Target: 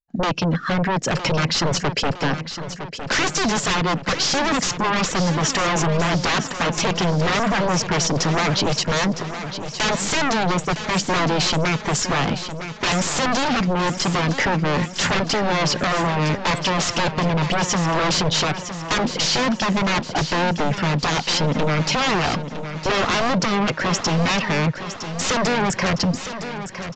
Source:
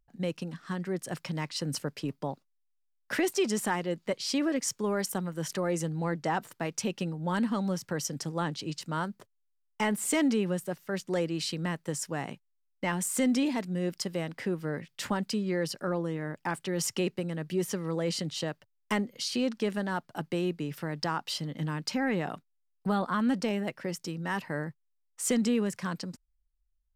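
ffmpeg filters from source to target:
-filter_complex "[0:a]agate=range=0.0224:threshold=0.00178:ratio=3:detection=peak,afftdn=nr=16:nf=-51,asplit=2[s0][s1];[s1]acompressor=threshold=0.0141:ratio=6,volume=0.891[s2];[s0][s2]amix=inputs=2:normalize=0,asoftclip=type=tanh:threshold=0.075,aeval=exprs='0.075*(cos(1*acos(clip(val(0)/0.075,-1,1)))-cos(1*PI/2))+0.00841*(cos(2*acos(clip(val(0)/0.075,-1,1)))-cos(2*PI/2))':c=same,aeval=exprs='0.15*sin(PI/2*6.31*val(0)/0.15)':c=same,asplit=2[s3][s4];[s4]aecho=0:1:960|1920|2880|3840|4800|5760:0.299|0.161|0.0871|0.047|0.0254|0.0137[s5];[s3][s5]amix=inputs=2:normalize=0,aresample=16000,aresample=44100"

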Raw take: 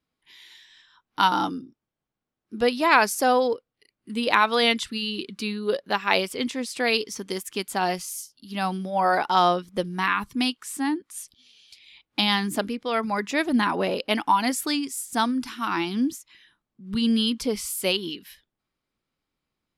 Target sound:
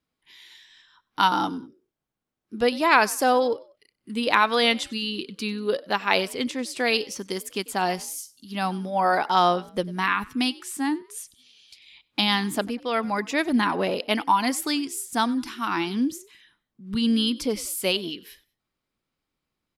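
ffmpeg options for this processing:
-filter_complex "[0:a]asplit=3[s0][s1][s2];[s1]adelay=95,afreqshift=55,volume=0.0794[s3];[s2]adelay=190,afreqshift=110,volume=0.0279[s4];[s0][s3][s4]amix=inputs=3:normalize=0"

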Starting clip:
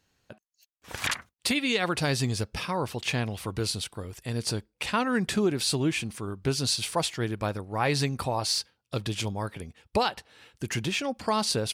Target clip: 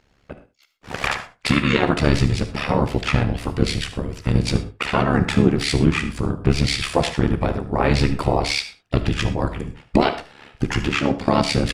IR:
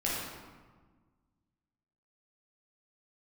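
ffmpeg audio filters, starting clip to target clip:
-filter_complex "[0:a]aemphasis=mode=reproduction:type=50fm,asplit=2[s0][s1];[s1]alimiter=limit=0.0708:level=0:latency=1:release=356,volume=1.12[s2];[s0][s2]amix=inputs=2:normalize=0,asplit=3[s3][s4][s5];[s4]asetrate=22050,aresample=44100,atempo=2,volume=0.794[s6];[s5]asetrate=35002,aresample=44100,atempo=1.25992,volume=0.631[s7];[s3][s6][s7]amix=inputs=3:normalize=0,tremolo=f=71:d=0.889,aecho=1:1:74:0.158,asplit=2[s8][s9];[1:a]atrim=start_sample=2205,afade=t=out:st=0.18:d=0.01,atrim=end_sample=8379,highshelf=f=6600:g=8.5[s10];[s9][s10]afir=irnorm=-1:irlink=0,volume=0.188[s11];[s8][s11]amix=inputs=2:normalize=0,volume=1.5"

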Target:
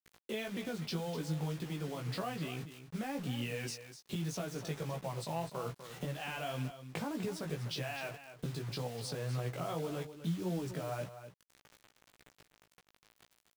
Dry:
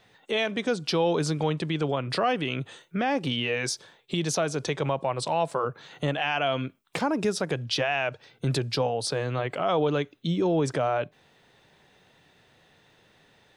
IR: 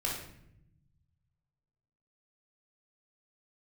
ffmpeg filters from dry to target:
-af "equalizer=f=150:w=1:g=9.5,acompressor=threshold=0.00891:ratio=2.5,acrusher=bits=7:mix=0:aa=0.000001,flanger=delay=16:depth=2.7:speed=1.8,aecho=1:1:249:0.266,volume=1.12"

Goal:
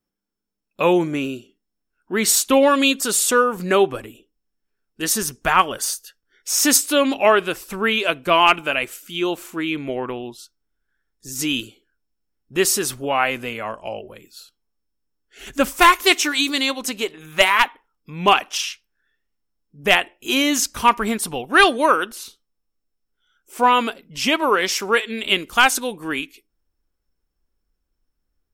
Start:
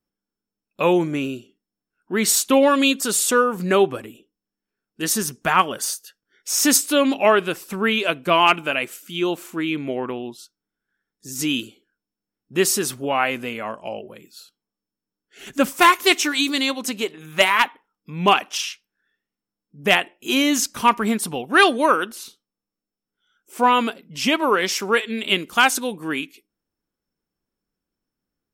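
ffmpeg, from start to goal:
-af "asubboost=boost=8:cutoff=59,volume=1.19"

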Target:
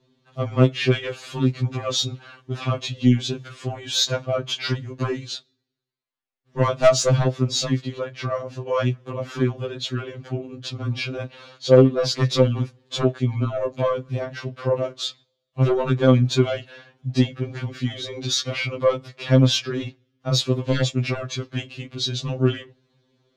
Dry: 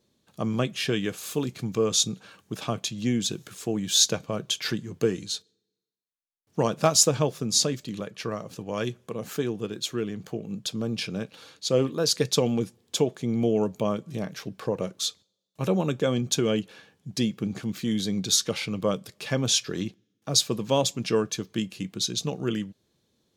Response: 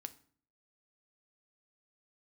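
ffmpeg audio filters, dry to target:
-af "lowpass=3300,aeval=exprs='0.501*(cos(1*acos(clip(val(0)/0.501,-1,1)))-cos(1*PI/2))+0.00562*(cos(3*acos(clip(val(0)/0.501,-1,1)))-cos(3*PI/2))+0.2*(cos(5*acos(clip(val(0)/0.501,-1,1)))-cos(5*PI/2))':c=same,afftfilt=real='re*2.45*eq(mod(b,6),0)':imag='im*2.45*eq(mod(b,6),0)':win_size=2048:overlap=0.75"

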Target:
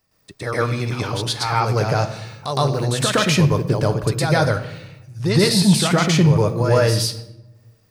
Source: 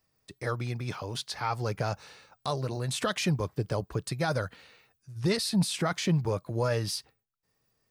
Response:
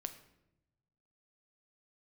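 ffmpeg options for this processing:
-filter_complex "[0:a]asplit=2[s0][s1];[1:a]atrim=start_sample=2205,adelay=113[s2];[s1][s2]afir=irnorm=-1:irlink=0,volume=2.51[s3];[s0][s3]amix=inputs=2:normalize=0,volume=1.88"

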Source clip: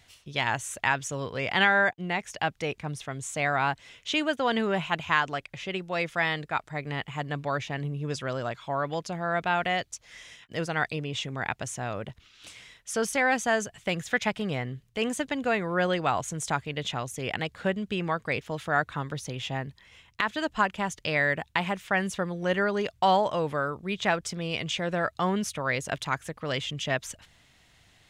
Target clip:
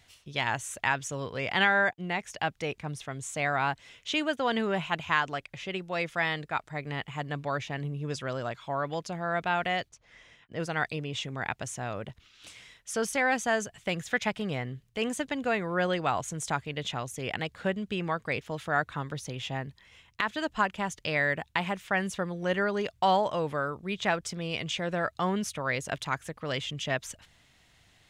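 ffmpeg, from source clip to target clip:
-filter_complex "[0:a]asplit=3[s0][s1][s2];[s0]afade=t=out:st=9.88:d=0.02[s3];[s1]lowpass=f=1400:p=1,afade=t=in:st=9.88:d=0.02,afade=t=out:st=10.59:d=0.02[s4];[s2]afade=t=in:st=10.59:d=0.02[s5];[s3][s4][s5]amix=inputs=3:normalize=0,volume=0.794"

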